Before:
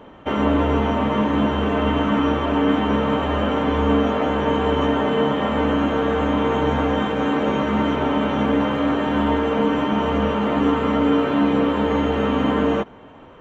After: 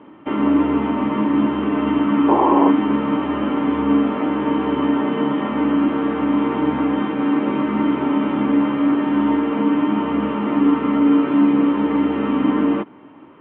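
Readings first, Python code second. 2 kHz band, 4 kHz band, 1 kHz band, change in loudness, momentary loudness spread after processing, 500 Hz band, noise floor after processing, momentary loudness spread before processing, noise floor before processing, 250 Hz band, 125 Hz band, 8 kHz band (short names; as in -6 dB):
-3.5 dB, -6.5 dB, -0.5 dB, +1.5 dB, 5 LU, -3.5 dB, -43 dBFS, 2 LU, -43 dBFS, +4.0 dB, -5.5 dB, n/a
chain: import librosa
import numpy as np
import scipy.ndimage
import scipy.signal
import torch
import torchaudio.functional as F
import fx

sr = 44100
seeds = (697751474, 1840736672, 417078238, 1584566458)

y = fx.spec_paint(x, sr, seeds[0], shape='noise', start_s=2.28, length_s=0.43, low_hz=330.0, high_hz=1100.0, level_db=-14.0)
y = fx.cabinet(y, sr, low_hz=160.0, low_slope=12, high_hz=2700.0, hz=(310.0, 490.0, 700.0, 1600.0), db=(9, -8, -7, -5))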